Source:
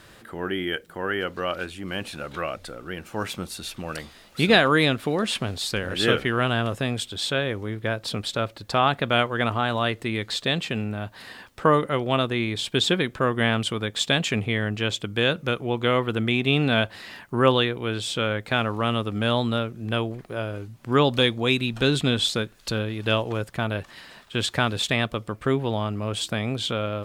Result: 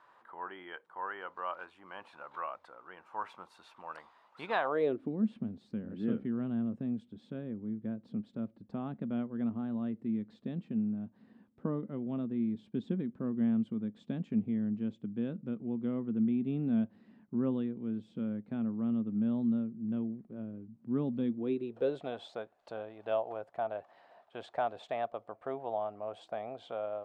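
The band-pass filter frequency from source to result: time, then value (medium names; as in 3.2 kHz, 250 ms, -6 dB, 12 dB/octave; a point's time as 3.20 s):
band-pass filter, Q 4.9
4.58 s 980 Hz
5.12 s 220 Hz
21.24 s 220 Hz
22.08 s 700 Hz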